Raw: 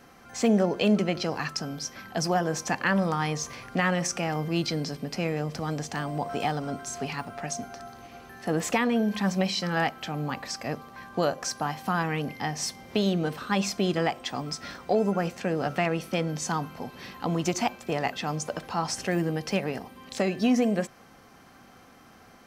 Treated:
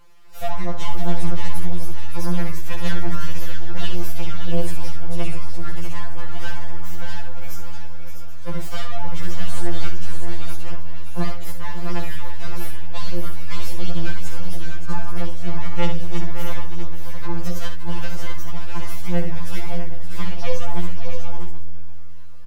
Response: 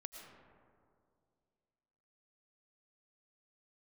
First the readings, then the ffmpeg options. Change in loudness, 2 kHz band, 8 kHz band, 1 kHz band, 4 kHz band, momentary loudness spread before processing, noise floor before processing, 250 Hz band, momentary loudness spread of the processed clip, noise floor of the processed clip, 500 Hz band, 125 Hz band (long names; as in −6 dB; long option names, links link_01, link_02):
−4.0 dB, −4.0 dB, −6.0 dB, −4.5 dB, −3.0 dB, 10 LU, −53 dBFS, −4.5 dB, 10 LU, −16 dBFS, −6.0 dB, +4.0 dB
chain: -filter_complex "[0:a]aeval=exprs='abs(val(0))':channel_layout=same,aphaser=in_gain=1:out_gain=1:delay=2.1:decay=0.26:speed=0.88:type=triangular,aecho=1:1:63|570|646|680|780:0.398|0.335|0.398|0.119|0.15,asplit=2[link_01][link_02];[1:a]atrim=start_sample=2205[link_03];[link_02][link_03]afir=irnorm=-1:irlink=0,volume=-10.5dB[link_04];[link_01][link_04]amix=inputs=2:normalize=0,afftfilt=real='re*2.83*eq(mod(b,8),0)':imag='im*2.83*eq(mod(b,8),0)':win_size=2048:overlap=0.75,volume=-2dB"